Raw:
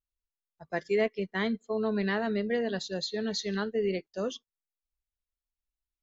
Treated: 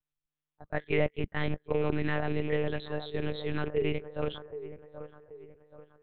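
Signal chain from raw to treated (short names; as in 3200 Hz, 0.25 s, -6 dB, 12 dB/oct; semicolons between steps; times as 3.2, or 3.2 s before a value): rattling part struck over -35 dBFS, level -31 dBFS; band-limited delay 0.776 s, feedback 40%, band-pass 670 Hz, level -10.5 dB; monotone LPC vocoder at 8 kHz 150 Hz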